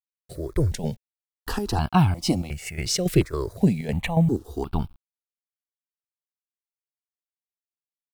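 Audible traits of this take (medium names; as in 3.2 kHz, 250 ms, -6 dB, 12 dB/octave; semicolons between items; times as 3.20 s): chopped level 3.6 Hz, depth 65%, duty 70%; a quantiser's noise floor 10-bit, dither none; notches that jump at a steady rate 2.8 Hz 240–1900 Hz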